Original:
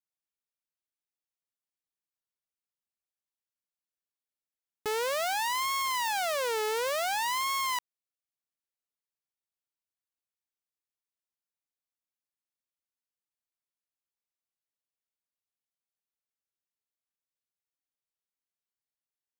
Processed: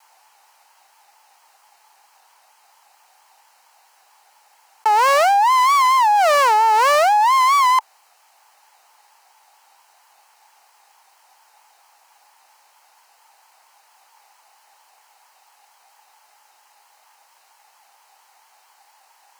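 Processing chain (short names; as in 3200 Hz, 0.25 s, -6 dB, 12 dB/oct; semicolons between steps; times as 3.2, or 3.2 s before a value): resonant high-pass 840 Hz, resonance Q 8; high shelf 9300 Hz -10 dB; notch 3500 Hz, Q 6.7; vibrato 4.4 Hz 89 cents; 4.9–7.34 crackle 350/s -39 dBFS; fast leveller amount 100%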